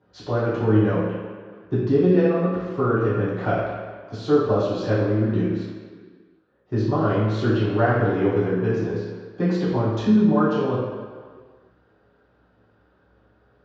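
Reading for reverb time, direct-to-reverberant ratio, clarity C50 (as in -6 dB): 1.8 s, -12.0 dB, 0.0 dB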